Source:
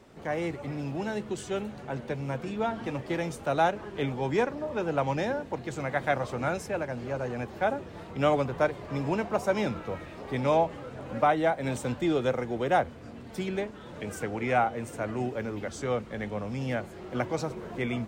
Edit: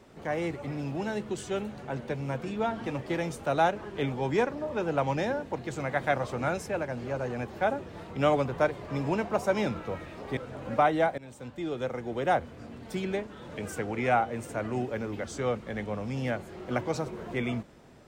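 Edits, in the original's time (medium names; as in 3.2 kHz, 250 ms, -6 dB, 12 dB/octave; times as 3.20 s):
10.37–10.81 s: delete
11.62–12.96 s: fade in, from -19.5 dB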